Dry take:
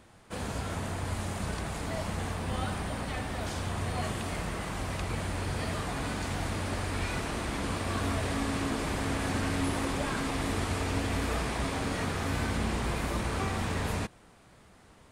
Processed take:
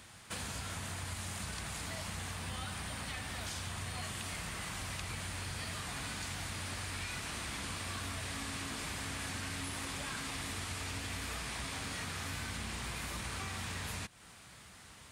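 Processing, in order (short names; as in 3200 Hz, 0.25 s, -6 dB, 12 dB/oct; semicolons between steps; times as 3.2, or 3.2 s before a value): HPF 57 Hz; passive tone stack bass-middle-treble 5-5-5; compressor 4:1, threshold -55 dBFS, peak gain reduction 12 dB; gain +15.5 dB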